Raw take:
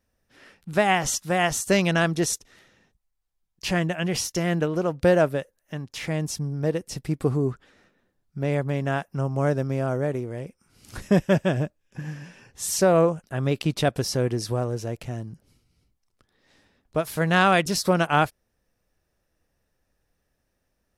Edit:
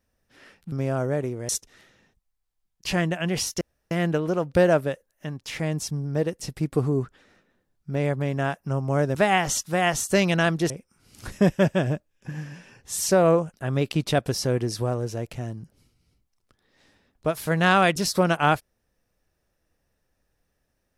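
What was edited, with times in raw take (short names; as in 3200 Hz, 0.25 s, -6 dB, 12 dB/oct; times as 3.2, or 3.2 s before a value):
0.72–2.27 swap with 9.63–10.4
4.39 insert room tone 0.30 s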